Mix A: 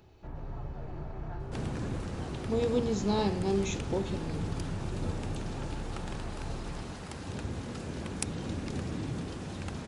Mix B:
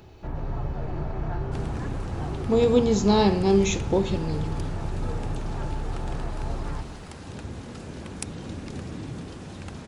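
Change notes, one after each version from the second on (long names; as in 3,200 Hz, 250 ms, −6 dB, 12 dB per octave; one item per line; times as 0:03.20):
speech +9.5 dB
first sound +9.5 dB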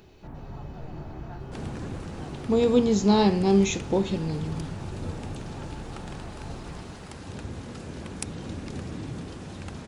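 first sound −5.0 dB
reverb: off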